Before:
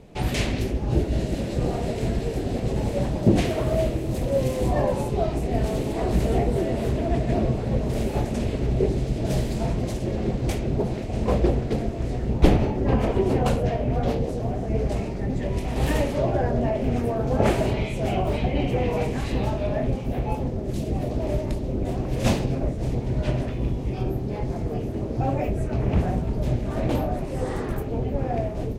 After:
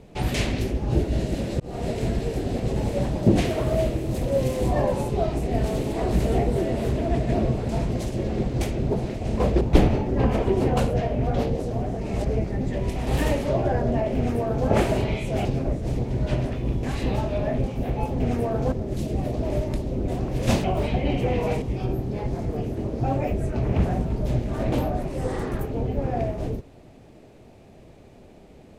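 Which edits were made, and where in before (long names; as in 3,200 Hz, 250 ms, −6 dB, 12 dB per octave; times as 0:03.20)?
0:01.60–0:01.87: fade in
0:07.69–0:09.57: remove
0:11.49–0:12.30: remove
0:14.70–0:15.13: reverse
0:16.85–0:17.37: duplicate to 0:20.49
0:18.14–0:19.12: swap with 0:22.41–0:23.79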